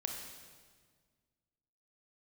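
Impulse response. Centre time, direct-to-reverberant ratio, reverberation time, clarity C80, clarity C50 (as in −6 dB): 53 ms, 1.5 dB, 1.7 s, 5.0 dB, 3.5 dB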